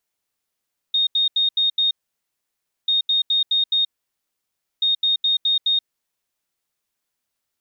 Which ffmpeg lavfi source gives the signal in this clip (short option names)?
-f lavfi -i "aevalsrc='0.168*sin(2*PI*3700*t)*clip(min(mod(mod(t,1.94),0.21),0.13-mod(mod(t,1.94),0.21))/0.005,0,1)*lt(mod(t,1.94),1.05)':d=5.82:s=44100"